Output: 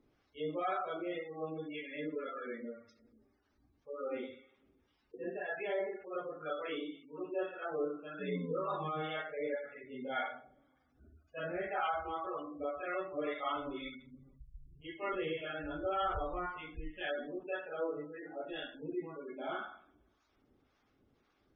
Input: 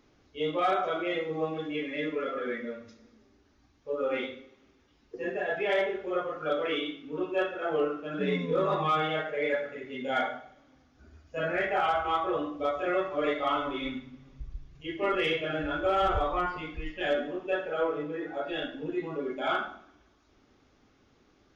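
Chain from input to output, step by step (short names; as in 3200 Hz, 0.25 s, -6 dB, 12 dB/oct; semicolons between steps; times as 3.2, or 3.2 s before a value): spectral gate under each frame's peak -25 dB strong; harmonic tremolo 1.9 Hz, depth 70%, crossover 670 Hz; gain -5.5 dB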